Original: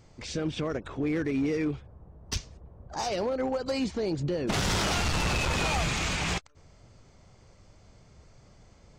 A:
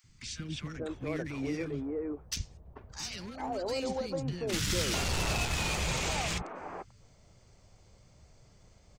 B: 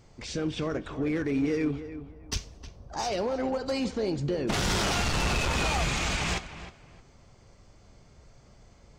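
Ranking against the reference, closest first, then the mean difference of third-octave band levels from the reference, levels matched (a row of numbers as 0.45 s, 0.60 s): B, A; 2.0 dB, 5.0 dB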